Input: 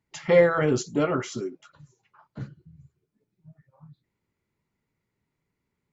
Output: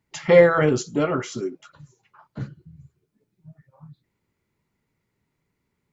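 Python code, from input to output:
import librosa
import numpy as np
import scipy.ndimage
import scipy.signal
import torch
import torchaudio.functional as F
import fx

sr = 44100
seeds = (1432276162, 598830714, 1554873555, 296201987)

y = fx.comb_fb(x, sr, f0_hz=160.0, decay_s=0.39, harmonics='all', damping=0.0, mix_pct=30, at=(0.69, 1.43))
y = y * 10.0 ** (4.5 / 20.0)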